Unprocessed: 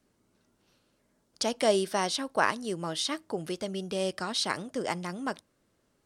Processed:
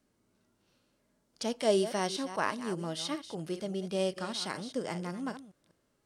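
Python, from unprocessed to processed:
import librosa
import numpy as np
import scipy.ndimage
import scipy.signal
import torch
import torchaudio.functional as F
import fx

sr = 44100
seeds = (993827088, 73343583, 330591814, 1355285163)

y = fx.reverse_delay(x, sr, ms=197, wet_db=-13.0)
y = fx.hpss(y, sr, part='percussive', gain_db=-9)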